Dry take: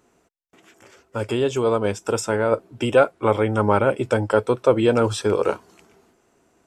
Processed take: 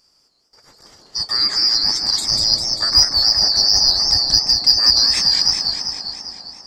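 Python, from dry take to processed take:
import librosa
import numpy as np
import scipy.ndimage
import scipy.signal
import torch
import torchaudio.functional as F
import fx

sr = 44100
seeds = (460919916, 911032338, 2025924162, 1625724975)

p1 = fx.band_shuffle(x, sr, order='2341')
p2 = 10.0 ** (-12.5 / 20.0) * np.tanh(p1 / 10.0 ** (-12.5 / 20.0))
p3 = p1 + (p2 * librosa.db_to_amplitude(-8.5))
p4 = fx.echo_wet_bandpass(p3, sr, ms=158, feedback_pct=78, hz=410.0, wet_db=-3.5)
y = fx.echo_warbled(p4, sr, ms=199, feedback_pct=66, rate_hz=2.8, cents=181, wet_db=-5.0)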